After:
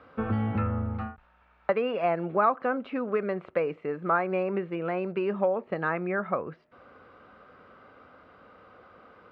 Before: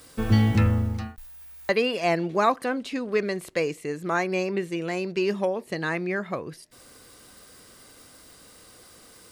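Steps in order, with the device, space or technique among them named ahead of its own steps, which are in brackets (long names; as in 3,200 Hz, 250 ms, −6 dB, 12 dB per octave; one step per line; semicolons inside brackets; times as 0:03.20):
bass amplifier (downward compressor 3 to 1, threshold −24 dBFS, peak gain reduction 8 dB; loudspeaker in its box 78–2,300 Hz, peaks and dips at 130 Hz −7 dB, 320 Hz −4 dB, 560 Hz +4 dB, 790 Hz +3 dB, 1,300 Hz +9 dB, 1,900 Hz −6 dB)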